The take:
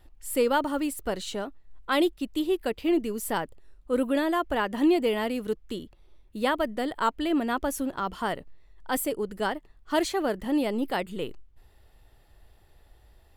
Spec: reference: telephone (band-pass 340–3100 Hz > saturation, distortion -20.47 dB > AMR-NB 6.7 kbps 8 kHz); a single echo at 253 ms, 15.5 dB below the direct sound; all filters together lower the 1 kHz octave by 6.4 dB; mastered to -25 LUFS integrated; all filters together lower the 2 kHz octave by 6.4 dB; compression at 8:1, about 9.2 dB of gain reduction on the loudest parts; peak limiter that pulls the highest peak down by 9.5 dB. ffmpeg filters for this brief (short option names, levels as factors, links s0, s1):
-af "equalizer=f=1000:t=o:g=-7,equalizer=f=2000:t=o:g=-5,acompressor=threshold=0.0355:ratio=8,alimiter=level_in=1.88:limit=0.0631:level=0:latency=1,volume=0.531,highpass=340,lowpass=3100,aecho=1:1:253:0.168,asoftclip=threshold=0.0224,volume=9.44" -ar 8000 -c:a libopencore_amrnb -b:a 6700